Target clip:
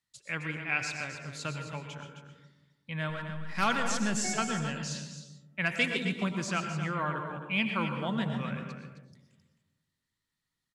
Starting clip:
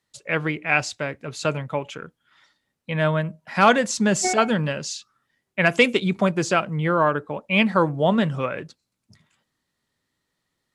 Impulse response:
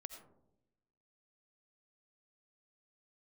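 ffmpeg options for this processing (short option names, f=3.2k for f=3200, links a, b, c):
-filter_complex "[0:a]equalizer=f=510:w=0.82:g=-11,asplit=3[a][b][c];[a]afade=t=out:st=3.09:d=0.02[d];[b]aeval=exprs='0.473*(cos(1*acos(clip(val(0)/0.473,-1,1)))-cos(1*PI/2))+0.0335*(cos(8*acos(clip(val(0)/0.473,-1,1)))-cos(8*PI/2))':c=same,afade=t=in:st=3.09:d=0.02,afade=t=out:st=3.66:d=0.02[e];[c]afade=t=in:st=3.66:d=0.02[f];[d][e][f]amix=inputs=3:normalize=0,aecho=1:1:264:0.316[g];[1:a]atrim=start_sample=2205,asetrate=32193,aresample=44100[h];[g][h]afir=irnorm=-1:irlink=0,volume=-4dB"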